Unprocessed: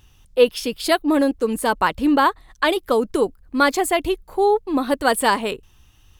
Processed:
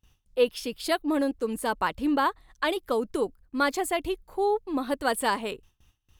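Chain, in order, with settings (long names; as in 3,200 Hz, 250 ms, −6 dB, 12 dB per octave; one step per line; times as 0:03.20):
noise gate with hold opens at −42 dBFS
level −8 dB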